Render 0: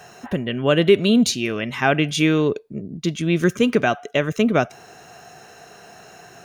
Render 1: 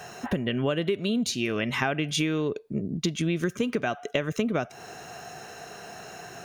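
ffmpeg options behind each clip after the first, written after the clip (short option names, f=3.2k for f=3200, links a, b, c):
-af "acompressor=threshold=-25dB:ratio=10,volume=2dB"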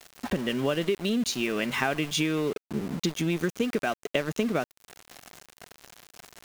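-af "equalizer=f=110:w=4.1:g=-14.5,aeval=exprs='val(0)*gte(abs(val(0)),0.0178)':c=same"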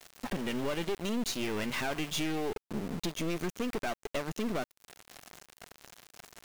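-af "aeval=exprs='(tanh(28.2*val(0)+0.65)-tanh(0.65))/28.2':c=same"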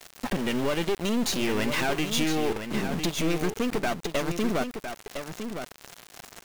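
-af "aecho=1:1:1008:0.398,volume=6.5dB"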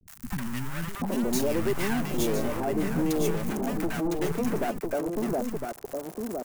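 -filter_complex "[0:a]equalizer=f=3.5k:t=o:w=2:g=-14.5,aeval=exprs='0.158*(cos(1*acos(clip(val(0)/0.158,-1,1)))-cos(1*PI/2))+0.0355*(cos(5*acos(clip(val(0)/0.158,-1,1)))-cos(5*PI/2))':c=same,acrossover=split=210|990[a][b][c];[c]adelay=70[d];[b]adelay=780[e];[a][e][d]amix=inputs=3:normalize=0"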